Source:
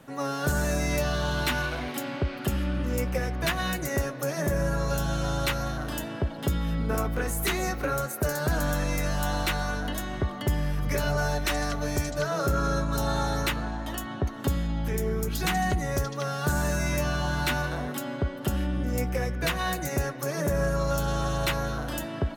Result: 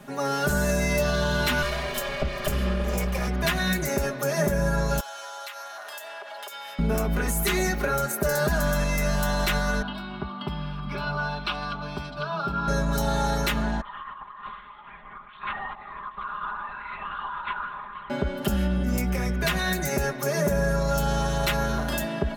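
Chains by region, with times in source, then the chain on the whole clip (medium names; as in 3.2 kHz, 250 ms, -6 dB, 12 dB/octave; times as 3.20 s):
1.62–3.28 s: comb filter that takes the minimum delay 1.7 ms + hum notches 50/100/150/200/250/300/350/400/450 Hz + upward compressor, threshold -31 dBFS
5.00–6.79 s: high-pass 650 Hz 24 dB/octave + compression 10:1, threshold -40 dBFS
9.82–12.68 s: high-pass 280 Hz 6 dB/octave + distance through air 150 m + static phaser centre 1.9 kHz, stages 6
13.81–18.10 s: ladder high-pass 1 kHz, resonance 80% + distance through air 160 m + LPC vocoder at 8 kHz whisper
whole clip: band-stop 470 Hz, Q 14; peak limiter -21.5 dBFS; comb 4.9 ms, depth 81%; trim +3.5 dB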